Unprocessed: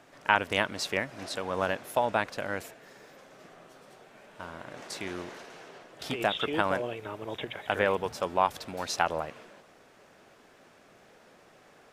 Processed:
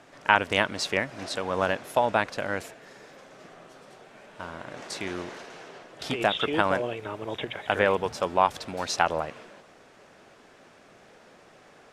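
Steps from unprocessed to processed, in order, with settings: low-pass 10 kHz 12 dB/octave; trim +3.5 dB

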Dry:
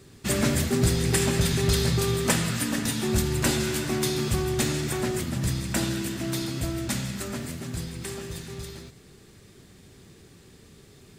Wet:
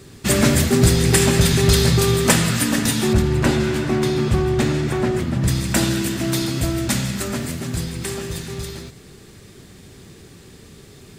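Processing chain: 3.13–5.48 s: low-pass 1.8 kHz 6 dB/octave; trim +8 dB

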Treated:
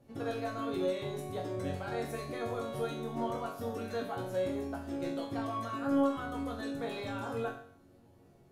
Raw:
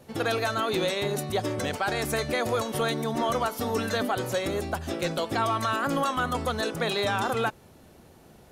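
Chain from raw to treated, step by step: tilt shelf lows +5.5 dB; chord resonator F#2 major, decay 0.54 s; trim +4 dB

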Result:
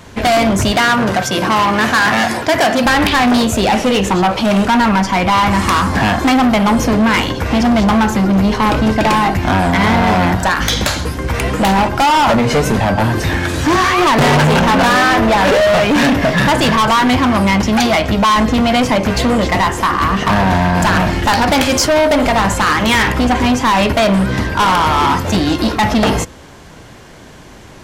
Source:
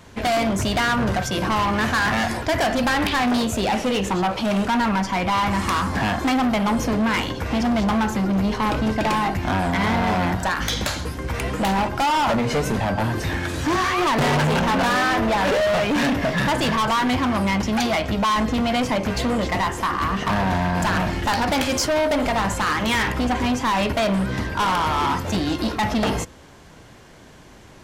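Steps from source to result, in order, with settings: 0.72–2.86 s: Bessel high-pass 170 Hz, order 2; trim +8.5 dB

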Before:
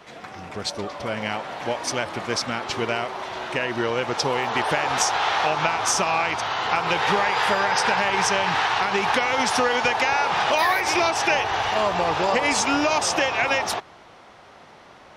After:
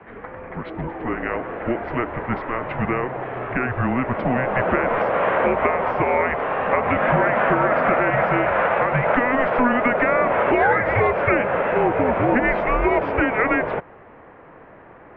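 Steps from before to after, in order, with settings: mistuned SSB -250 Hz 280–2400 Hz; trim +3.5 dB

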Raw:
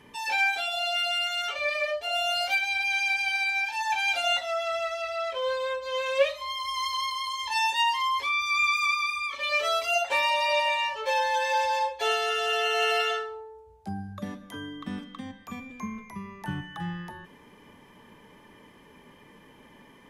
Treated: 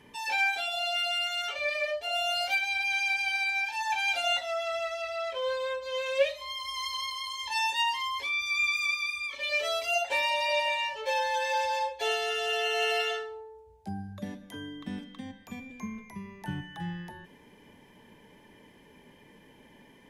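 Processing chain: peaking EQ 1.2 kHz -5 dB 0.31 oct, from 5.83 s -13 dB; trim -2 dB

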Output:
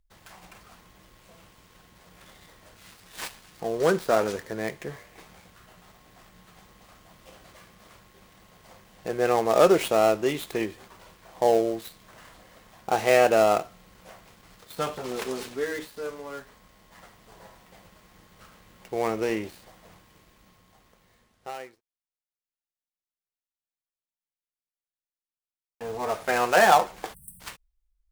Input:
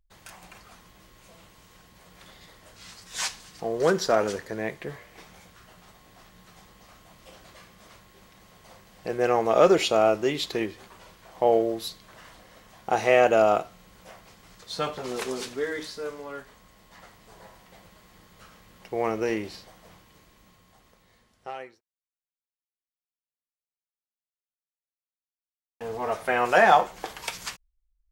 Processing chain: dead-time distortion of 0.083 ms; spectral selection erased 27.14–27.40 s, 230–8000 Hz

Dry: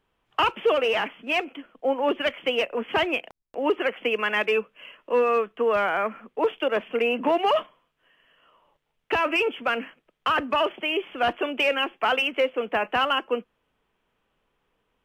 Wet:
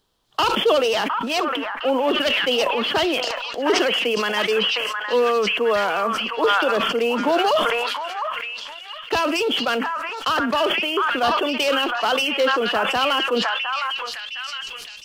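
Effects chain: resonant high shelf 3.2 kHz +9.5 dB, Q 3; repeats whose band climbs or falls 710 ms, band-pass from 1.3 kHz, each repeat 0.7 oct, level -2 dB; decay stretcher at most 24 dB/s; trim +2.5 dB

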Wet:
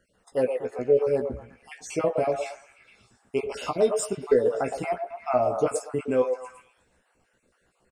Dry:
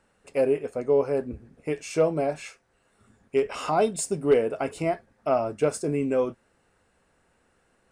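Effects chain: random holes in the spectrogram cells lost 37%; doubling 16 ms -6.5 dB; repeats whose band climbs or falls 115 ms, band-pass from 600 Hz, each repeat 0.7 oct, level -4.5 dB

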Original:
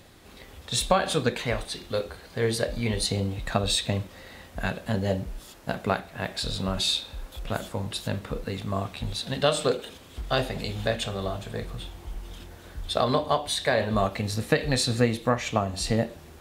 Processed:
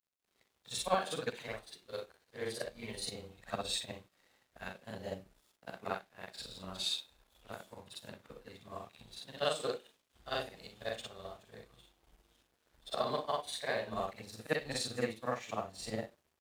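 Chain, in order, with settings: short-time spectra conjugated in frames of 128 ms; bass shelf 180 Hz -11.5 dB; crossover distortion -52 dBFS; upward expansion 1.5:1, over -44 dBFS; trim -3.5 dB

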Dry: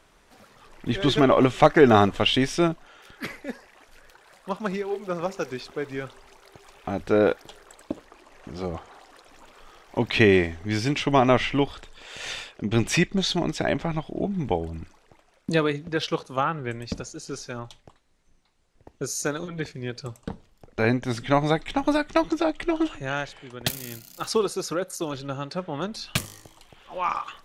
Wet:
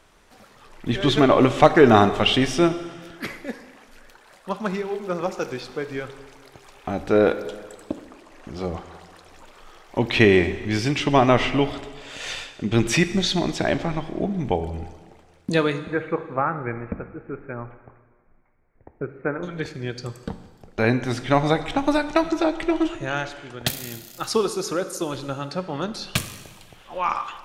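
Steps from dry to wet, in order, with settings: 15.82–19.43 s: Chebyshev low-pass 2.3 kHz, order 6; plate-style reverb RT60 1.6 s, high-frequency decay 0.95×, DRR 10.5 dB; trim +2 dB

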